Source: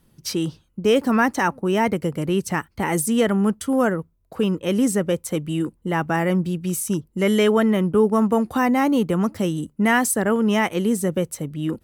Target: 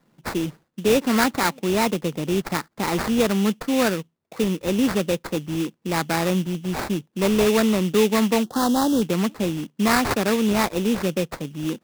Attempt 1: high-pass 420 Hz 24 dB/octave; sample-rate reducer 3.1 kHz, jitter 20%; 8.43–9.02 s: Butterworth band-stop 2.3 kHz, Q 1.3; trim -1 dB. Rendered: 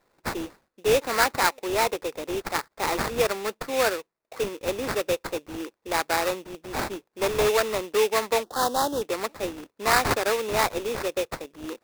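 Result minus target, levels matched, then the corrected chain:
125 Hz band -8.5 dB
high-pass 150 Hz 24 dB/octave; sample-rate reducer 3.1 kHz, jitter 20%; 8.43–9.02 s: Butterworth band-stop 2.3 kHz, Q 1.3; trim -1 dB

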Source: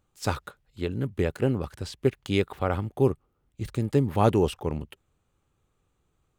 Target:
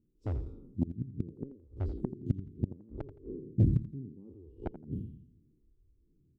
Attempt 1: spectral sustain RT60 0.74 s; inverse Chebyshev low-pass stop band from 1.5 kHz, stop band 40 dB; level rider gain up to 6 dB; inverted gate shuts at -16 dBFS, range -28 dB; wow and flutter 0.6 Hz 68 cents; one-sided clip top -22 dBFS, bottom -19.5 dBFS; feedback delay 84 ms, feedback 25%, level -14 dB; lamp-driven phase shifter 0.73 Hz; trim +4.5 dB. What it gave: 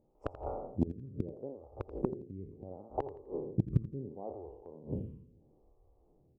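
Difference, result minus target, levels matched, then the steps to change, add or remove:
500 Hz band +9.0 dB
change: inverse Chebyshev low-pass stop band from 640 Hz, stop band 40 dB

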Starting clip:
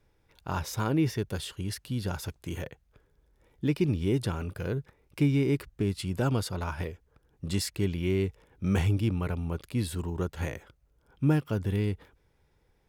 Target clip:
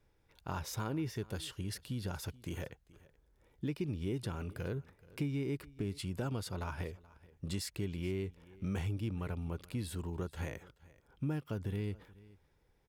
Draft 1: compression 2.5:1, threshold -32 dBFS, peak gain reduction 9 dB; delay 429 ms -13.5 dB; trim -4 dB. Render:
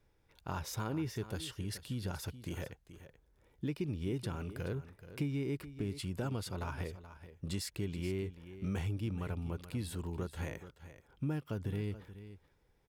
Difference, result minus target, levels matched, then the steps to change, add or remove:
echo-to-direct +8 dB
change: delay 429 ms -21.5 dB

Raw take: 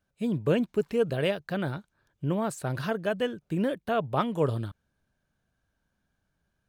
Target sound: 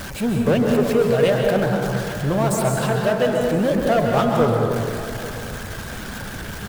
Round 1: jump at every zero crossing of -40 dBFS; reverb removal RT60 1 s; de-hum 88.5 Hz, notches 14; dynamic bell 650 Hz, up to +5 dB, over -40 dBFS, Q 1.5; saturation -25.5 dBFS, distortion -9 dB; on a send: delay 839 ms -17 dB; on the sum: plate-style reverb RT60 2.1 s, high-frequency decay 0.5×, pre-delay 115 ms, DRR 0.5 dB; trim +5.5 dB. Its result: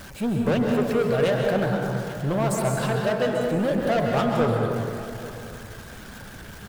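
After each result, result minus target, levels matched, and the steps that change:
jump at every zero crossing: distortion -8 dB; saturation: distortion +7 dB
change: jump at every zero crossing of -30.5 dBFS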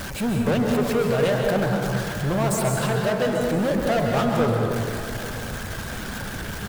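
saturation: distortion +8 dB
change: saturation -18 dBFS, distortion -16 dB

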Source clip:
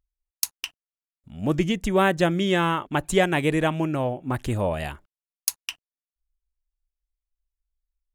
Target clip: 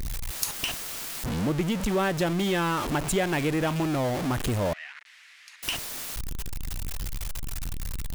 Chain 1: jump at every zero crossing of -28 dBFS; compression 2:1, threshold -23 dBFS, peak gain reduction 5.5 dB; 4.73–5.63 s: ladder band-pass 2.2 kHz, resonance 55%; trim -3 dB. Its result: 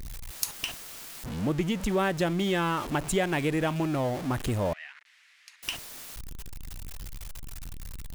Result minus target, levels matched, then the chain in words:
jump at every zero crossing: distortion -6 dB
jump at every zero crossing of -20.5 dBFS; compression 2:1, threshold -23 dBFS, peak gain reduction 6 dB; 4.73–5.63 s: ladder band-pass 2.2 kHz, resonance 55%; trim -3 dB

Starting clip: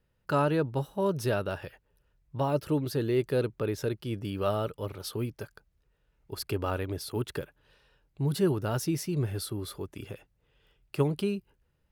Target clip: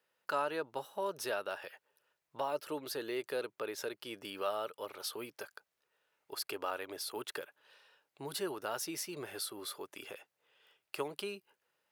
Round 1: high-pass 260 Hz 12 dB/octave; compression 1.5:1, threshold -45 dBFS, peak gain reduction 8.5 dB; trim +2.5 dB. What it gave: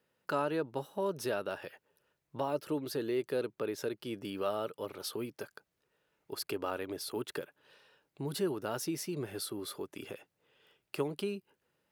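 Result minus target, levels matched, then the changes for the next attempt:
250 Hz band +5.5 dB
change: high-pass 610 Hz 12 dB/octave

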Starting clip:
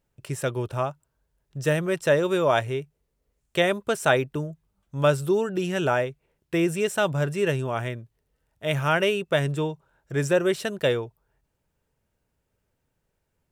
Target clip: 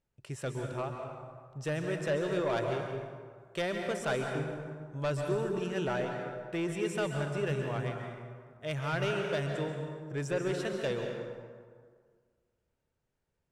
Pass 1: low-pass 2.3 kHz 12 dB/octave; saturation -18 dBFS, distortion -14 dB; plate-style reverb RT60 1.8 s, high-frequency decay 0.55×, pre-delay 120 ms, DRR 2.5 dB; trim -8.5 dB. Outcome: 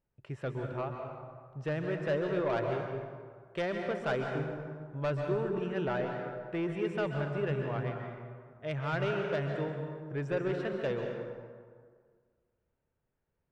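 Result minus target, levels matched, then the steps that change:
8 kHz band -15.5 dB
change: low-pass 8.4 kHz 12 dB/octave

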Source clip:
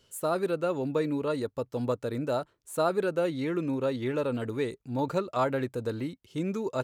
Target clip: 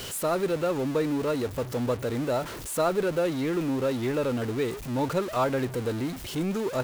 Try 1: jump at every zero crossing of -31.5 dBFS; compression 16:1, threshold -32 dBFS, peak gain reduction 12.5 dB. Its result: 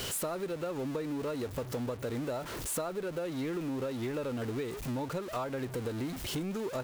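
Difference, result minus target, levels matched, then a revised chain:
compression: peak gain reduction +12.5 dB
jump at every zero crossing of -31.5 dBFS

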